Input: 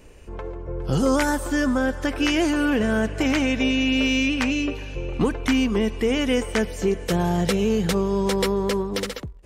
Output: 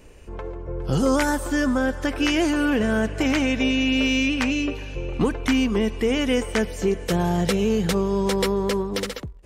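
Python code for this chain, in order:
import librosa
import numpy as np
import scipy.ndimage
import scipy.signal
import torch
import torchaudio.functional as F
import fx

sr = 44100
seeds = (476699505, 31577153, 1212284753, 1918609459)

y = x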